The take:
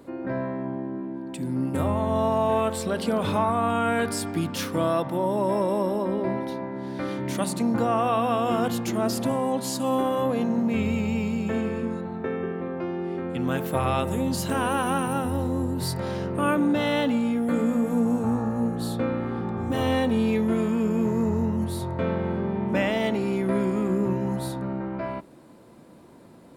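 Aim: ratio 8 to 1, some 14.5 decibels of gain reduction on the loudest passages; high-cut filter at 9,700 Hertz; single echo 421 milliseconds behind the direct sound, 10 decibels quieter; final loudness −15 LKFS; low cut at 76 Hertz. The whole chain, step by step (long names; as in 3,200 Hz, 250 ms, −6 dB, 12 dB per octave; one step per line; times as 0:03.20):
high-pass filter 76 Hz
low-pass filter 9,700 Hz
downward compressor 8 to 1, threshold −35 dBFS
single-tap delay 421 ms −10 dB
level +23 dB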